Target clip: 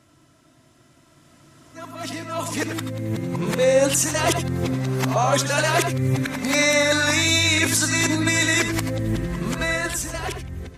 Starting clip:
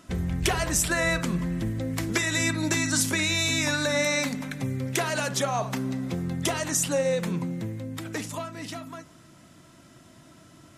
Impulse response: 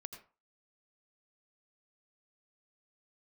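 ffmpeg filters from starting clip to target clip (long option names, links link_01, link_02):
-filter_complex "[0:a]areverse,equalizer=frequency=180:width=7.2:gain=-14,alimiter=limit=-18dB:level=0:latency=1:release=220,dynaudnorm=framelen=520:gausssize=7:maxgain=13.5dB[link_01];[1:a]atrim=start_sample=2205,afade=type=out:start_time=0.15:duration=0.01,atrim=end_sample=7056,asetrate=43218,aresample=44100[link_02];[link_01][link_02]afir=irnorm=-1:irlink=0"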